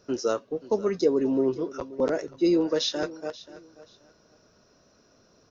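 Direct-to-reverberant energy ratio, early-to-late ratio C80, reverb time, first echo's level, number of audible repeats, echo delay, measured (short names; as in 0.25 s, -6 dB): none, none, none, -18.0 dB, 2, 0.532 s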